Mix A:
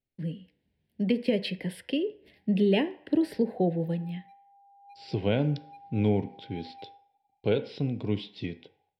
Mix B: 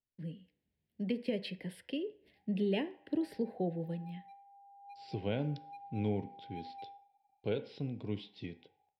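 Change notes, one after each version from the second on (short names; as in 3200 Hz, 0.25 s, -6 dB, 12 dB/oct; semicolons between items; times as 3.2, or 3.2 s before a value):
speech -9.0 dB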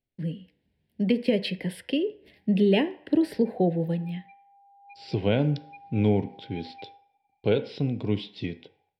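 speech +11.5 dB; background: add synth low-pass 2300 Hz, resonance Q 6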